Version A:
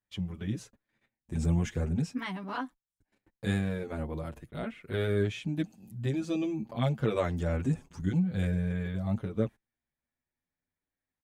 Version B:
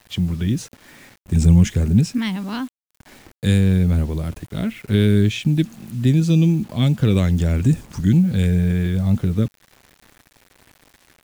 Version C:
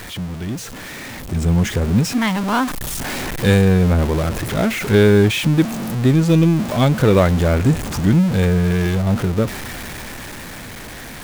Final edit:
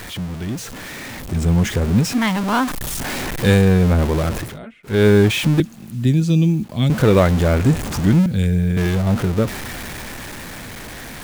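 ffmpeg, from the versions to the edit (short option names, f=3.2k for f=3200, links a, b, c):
-filter_complex "[1:a]asplit=2[a][b];[2:a]asplit=4[c][d][e][f];[c]atrim=end=4.59[g];[0:a]atrim=start=4.35:end=5.07[h];[d]atrim=start=4.83:end=5.602[i];[a]atrim=start=5.598:end=6.902[j];[e]atrim=start=6.898:end=8.262[k];[b]atrim=start=8.258:end=8.772[l];[f]atrim=start=8.768[m];[g][h]acrossfade=d=0.24:c1=tri:c2=tri[n];[n][i]acrossfade=d=0.24:c1=tri:c2=tri[o];[o][j]acrossfade=d=0.004:c1=hsin:c2=hsin[p];[p][k]acrossfade=d=0.004:c1=hsin:c2=hsin[q];[q][l]acrossfade=d=0.004:c1=hsin:c2=hsin[r];[r][m]acrossfade=d=0.004:c1=hsin:c2=hsin"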